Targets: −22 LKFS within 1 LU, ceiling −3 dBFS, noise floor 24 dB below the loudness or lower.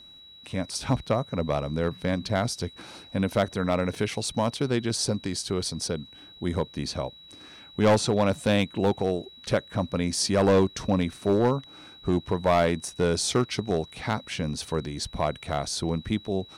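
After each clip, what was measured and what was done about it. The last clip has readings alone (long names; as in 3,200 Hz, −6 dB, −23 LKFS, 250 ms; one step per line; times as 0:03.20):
share of clipped samples 0.8%; peaks flattened at −15.0 dBFS; interfering tone 3,900 Hz; level of the tone −47 dBFS; integrated loudness −27.0 LKFS; sample peak −15.0 dBFS; target loudness −22.0 LKFS
→ clipped peaks rebuilt −15 dBFS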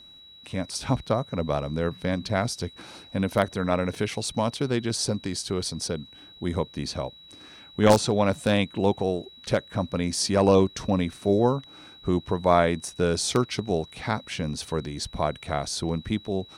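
share of clipped samples 0.0%; interfering tone 3,900 Hz; level of the tone −47 dBFS
→ notch filter 3,900 Hz, Q 30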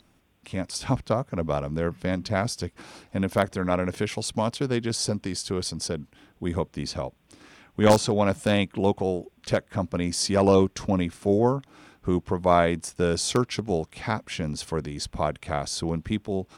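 interfering tone none found; integrated loudness −26.5 LKFS; sample peak −6.0 dBFS; target loudness −22.0 LKFS
→ level +4.5 dB
brickwall limiter −3 dBFS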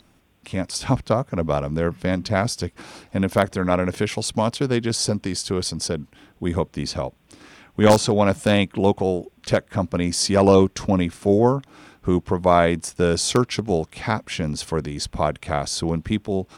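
integrated loudness −22.0 LKFS; sample peak −3.0 dBFS; background noise floor −58 dBFS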